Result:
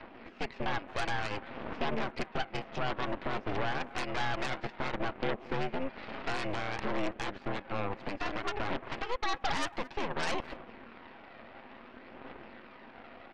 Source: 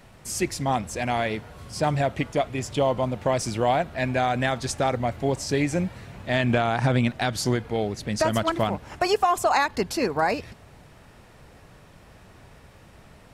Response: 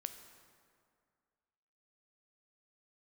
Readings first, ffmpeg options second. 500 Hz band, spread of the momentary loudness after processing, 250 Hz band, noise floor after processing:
−12.5 dB, 17 LU, −12.0 dB, −53 dBFS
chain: -filter_complex "[0:a]aecho=1:1:6.9:0.37,acompressor=threshold=-34dB:ratio=3,alimiter=level_in=3.5dB:limit=-24dB:level=0:latency=1:release=135,volume=-3.5dB,aphaser=in_gain=1:out_gain=1:delay=1.8:decay=0.37:speed=0.57:type=triangular,highpass=frequency=170:width_type=q:width=0.5412,highpass=frequency=170:width_type=q:width=1.307,lowpass=frequency=2600:width_type=q:width=0.5176,lowpass=frequency=2600:width_type=q:width=0.7071,lowpass=frequency=2600:width_type=q:width=1.932,afreqshift=84,asplit=2[link_01][link_02];[link_02]adelay=220,highpass=300,lowpass=3400,asoftclip=type=hard:threshold=-32dB,volume=-17dB[link_03];[link_01][link_03]amix=inputs=2:normalize=0,aeval=exprs='0.0668*(cos(1*acos(clip(val(0)/0.0668,-1,1)))-cos(1*PI/2))+0.0237*(cos(8*acos(clip(val(0)/0.0668,-1,1)))-cos(8*PI/2))':channel_layout=same"

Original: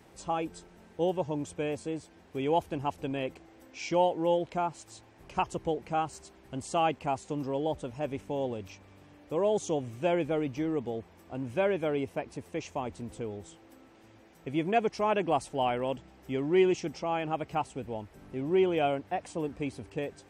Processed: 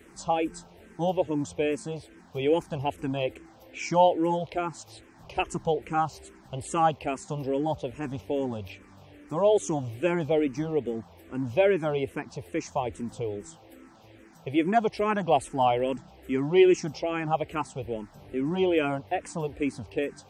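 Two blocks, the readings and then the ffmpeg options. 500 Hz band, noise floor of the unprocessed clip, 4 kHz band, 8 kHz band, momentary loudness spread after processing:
+3.5 dB, −57 dBFS, +3.5 dB, +4.5 dB, 14 LU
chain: -filter_complex "[0:a]asplit=2[link_01][link_02];[link_02]afreqshift=-2.4[link_03];[link_01][link_03]amix=inputs=2:normalize=1,volume=7dB"

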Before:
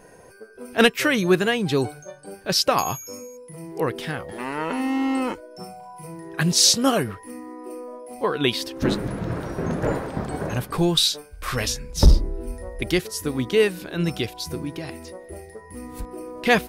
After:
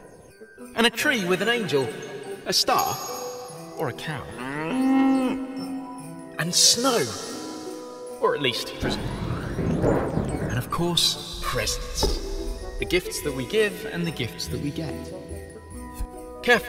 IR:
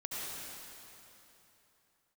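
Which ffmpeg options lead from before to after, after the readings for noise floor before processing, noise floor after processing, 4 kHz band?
−46 dBFS, −42 dBFS, −0.5 dB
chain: -filter_complex "[0:a]acrossover=split=230[link_01][link_02];[link_01]acompressor=threshold=-27dB:ratio=6[link_03];[link_03][link_02]amix=inputs=2:normalize=0,aphaser=in_gain=1:out_gain=1:delay=2.9:decay=0.54:speed=0.2:type=triangular,asplit=2[link_04][link_05];[1:a]atrim=start_sample=2205,adelay=141[link_06];[link_05][link_06]afir=irnorm=-1:irlink=0,volume=-15dB[link_07];[link_04][link_07]amix=inputs=2:normalize=0,volume=-2dB"

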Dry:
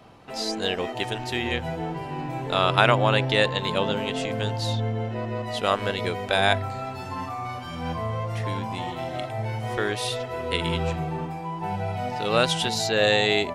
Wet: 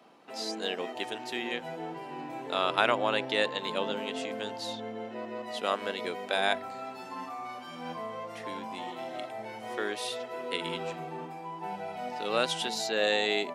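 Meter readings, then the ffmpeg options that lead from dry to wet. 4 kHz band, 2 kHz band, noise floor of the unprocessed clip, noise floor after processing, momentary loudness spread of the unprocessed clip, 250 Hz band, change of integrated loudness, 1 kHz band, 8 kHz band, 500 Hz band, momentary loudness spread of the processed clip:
−6.5 dB, −6.5 dB, −35 dBFS, −43 dBFS, 11 LU, −8.5 dB, −7.0 dB, −6.5 dB, −6.5 dB, −6.5 dB, 13 LU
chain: -af "highpass=frequency=210:width=0.5412,highpass=frequency=210:width=1.3066,volume=-6.5dB"

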